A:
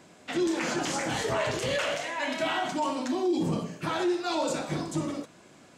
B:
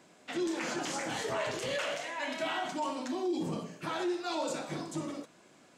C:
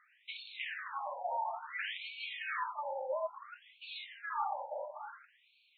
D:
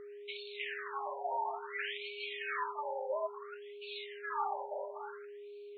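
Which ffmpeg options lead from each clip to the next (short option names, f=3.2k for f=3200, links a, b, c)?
-af "equalizer=f=61:w=0.71:g=-11.5,volume=-5dB"
-af "afreqshift=270,afftfilt=real='re*between(b*sr/1024,670*pow(3200/670,0.5+0.5*sin(2*PI*0.58*pts/sr))/1.41,670*pow(3200/670,0.5+0.5*sin(2*PI*0.58*pts/sr))*1.41)':imag='im*between(b*sr/1024,670*pow(3200/670,0.5+0.5*sin(2*PI*0.58*pts/sr))/1.41,670*pow(3200/670,0.5+0.5*sin(2*PI*0.58*pts/sr))*1.41)':win_size=1024:overlap=0.75"
-af "aeval=exprs='val(0)+0.00501*sin(2*PI*410*n/s)':c=same"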